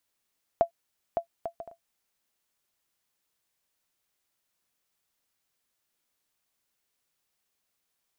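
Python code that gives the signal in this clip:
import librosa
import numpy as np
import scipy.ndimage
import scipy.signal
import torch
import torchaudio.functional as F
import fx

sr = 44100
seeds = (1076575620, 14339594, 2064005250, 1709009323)

y = fx.bouncing_ball(sr, first_gap_s=0.56, ratio=0.51, hz=676.0, decay_ms=100.0, level_db=-12.0)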